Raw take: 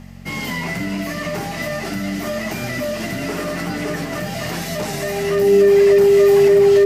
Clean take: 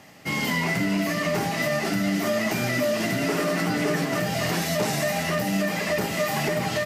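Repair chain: de-hum 45.7 Hz, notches 5; notch 400 Hz, Q 30

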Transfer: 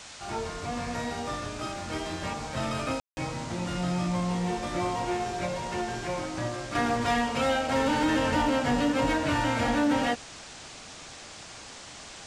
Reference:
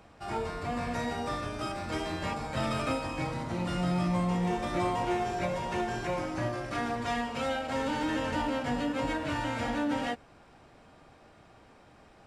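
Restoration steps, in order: clip repair -18.5 dBFS; room tone fill 3–3.17; noise print and reduce 12 dB; gain correction -6 dB, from 6.75

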